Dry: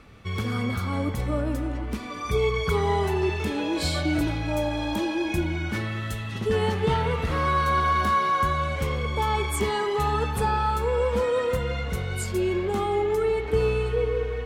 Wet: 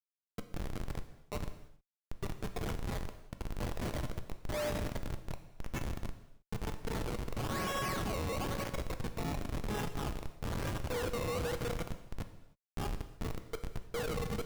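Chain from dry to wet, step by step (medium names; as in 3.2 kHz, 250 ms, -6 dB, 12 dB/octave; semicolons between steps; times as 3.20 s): spectral gate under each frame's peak -25 dB strong; 3.91–4.48 s: low-pass 2.5 kHz 12 dB/octave; compression 6:1, threshold -24 dBFS, peak gain reduction 7 dB; 10.15–10.90 s: ring modulator 320 Hz; rippled Chebyshev high-pass 450 Hz, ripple 6 dB; decimation with a swept rate 19×, swing 100% 1 Hz; Schmitt trigger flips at -33 dBFS; gated-style reverb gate 340 ms falling, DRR 8 dB; trim +1 dB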